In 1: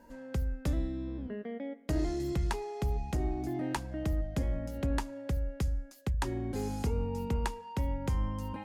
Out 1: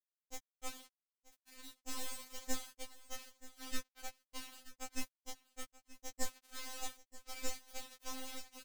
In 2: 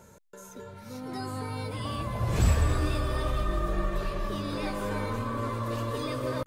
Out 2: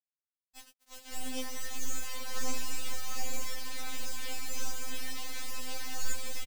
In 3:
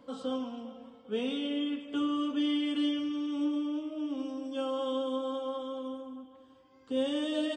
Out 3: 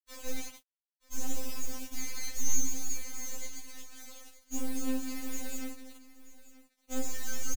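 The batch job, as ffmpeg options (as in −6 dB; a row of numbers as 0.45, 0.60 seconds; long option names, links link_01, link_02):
-af "afftfilt=real='re*pow(10,7/40*sin(2*PI*(0.56*log(max(b,1)*sr/1024/100)/log(2)-(1.4)*(pts-256)/sr)))':imag='im*pow(10,7/40*sin(2*PI*(0.56*log(max(b,1)*sr/1024/100)/log(2)-(1.4)*(pts-256)/sr)))':win_size=1024:overlap=0.75,aemphasis=mode=reproduction:type=50fm,afftfilt=real='re*lt(hypot(re,im),0.126)':imag='im*lt(hypot(re,im),0.126)':win_size=1024:overlap=0.75,acontrast=51,aresample=11025,aeval=exprs='sgn(val(0))*max(abs(val(0))-0.00299,0)':channel_layout=same,aresample=44100,bandpass=frequency=3700:width_type=q:width=3.5:csg=0,aeval=exprs='abs(val(0))':channel_layout=same,flanger=delay=17:depth=6.1:speed=0.31,acrusher=bits=8:mix=0:aa=0.000001,aecho=1:1:930:0.126,afftfilt=real='re*3.46*eq(mod(b,12),0)':imag='im*3.46*eq(mod(b,12),0)':win_size=2048:overlap=0.75,volume=14dB"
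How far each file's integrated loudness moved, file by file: −12.5, −8.0, −5.0 LU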